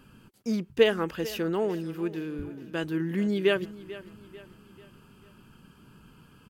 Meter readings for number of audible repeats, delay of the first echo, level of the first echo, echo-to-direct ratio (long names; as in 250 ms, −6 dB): 3, 442 ms, −17.0 dB, −16.0 dB